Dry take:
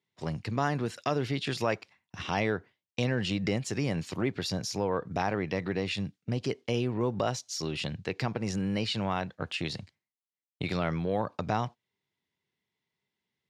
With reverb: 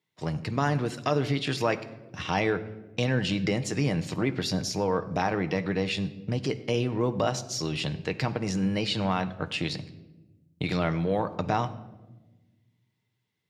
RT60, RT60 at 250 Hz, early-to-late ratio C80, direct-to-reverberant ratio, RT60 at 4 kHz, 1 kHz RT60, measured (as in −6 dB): 1.2 s, 1.9 s, 16.5 dB, 9.0 dB, 0.70 s, 0.90 s